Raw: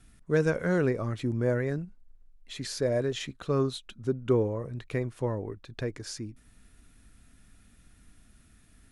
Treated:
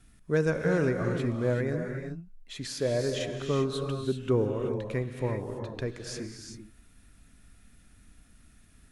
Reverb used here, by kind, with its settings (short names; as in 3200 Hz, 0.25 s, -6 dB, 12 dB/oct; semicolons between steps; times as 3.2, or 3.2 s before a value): non-linear reverb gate 0.41 s rising, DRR 3.5 dB; gain -1 dB